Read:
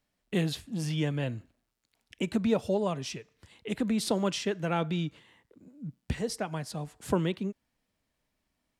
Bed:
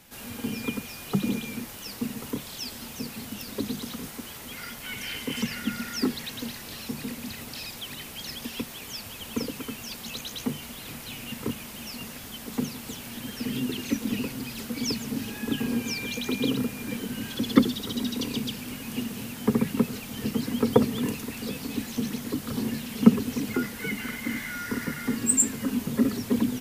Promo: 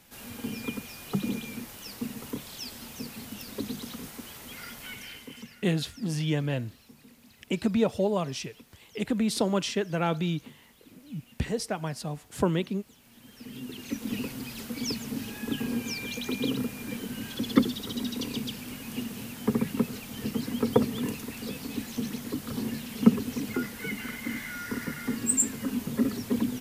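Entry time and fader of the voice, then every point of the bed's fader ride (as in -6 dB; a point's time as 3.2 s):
5.30 s, +2.0 dB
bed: 4.84 s -3.5 dB
5.63 s -19.5 dB
12.96 s -19.5 dB
14.17 s -3 dB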